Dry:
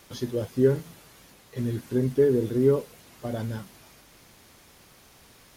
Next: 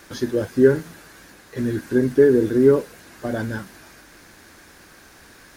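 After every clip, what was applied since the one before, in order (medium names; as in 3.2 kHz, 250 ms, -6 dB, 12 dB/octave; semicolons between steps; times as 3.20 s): graphic EQ with 31 bands 125 Hz -7 dB, 315 Hz +6 dB, 1.6 kHz +11 dB, 3.15 kHz -4 dB, 12.5 kHz -5 dB; trim +5.5 dB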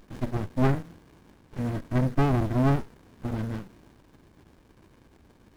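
sliding maximum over 65 samples; trim -4 dB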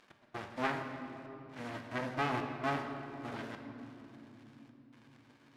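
band-pass filter 2.4 kHz, Q 0.62; trance gate "x..xxxxxxx" 131 bpm -24 dB; on a send at -4 dB: reverberation, pre-delay 4 ms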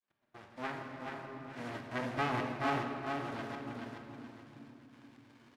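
fade-in on the opening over 1.30 s; feedback delay 427 ms, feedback 33%, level -4.5 dB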